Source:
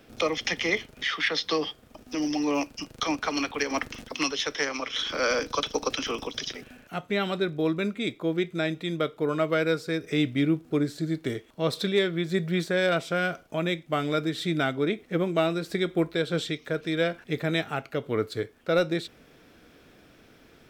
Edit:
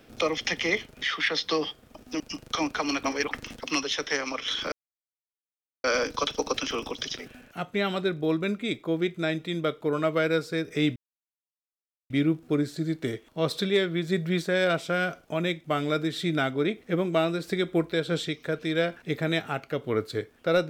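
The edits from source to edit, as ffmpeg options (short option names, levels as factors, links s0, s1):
-filter_complex "[0:a]asplit=6[s0][s1][s2][s3][s4][s5];[s0]atrim=end=2.202[s6];[s1]atrim=start=2.678:end=3.522[s7];[s2]atrim=start=3.518:end=3.792,asetpts=PTS-STARTPTS,areverse[s8];[s3]atrim=start=3.788:end=5.2,asetpts=PTS-STARTPTS,afade=t=out:st=1.408:d=0.004:c=hsin,apad=pad_dur=1.12[s9];[s4]atrim=start=5.2:end=10.32,asetpts=PTS-STARTPTS,afade=t=in:d=0.004:c=hsin,afade=t=out:st=5.116:d=0.004:c=hsin,apad=pad_dur=1.14[s10];[s5]atrim=start=10.32,asetpts=PTS-STARTPTS,afade=t=in:d=0.004:c=hsin[s11];[s6][s7]acrossfade=d=0.004:c1=hsin:c2=hsin[s12];[s12][s8]acrossfade=d=0.004:c1=hsin:c2=hsin[s13];[s9][s10][s11]concat=n=3:v=0:a=1[s14];[s13][s14]acrossfade=d=0.004:c1=hsin:c2=hsin"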